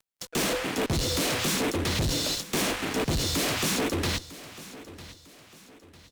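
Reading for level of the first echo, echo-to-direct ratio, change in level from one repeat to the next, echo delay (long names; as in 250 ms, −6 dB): −17.0 dB, −16.5 dB, −8.0 dB, 951 ms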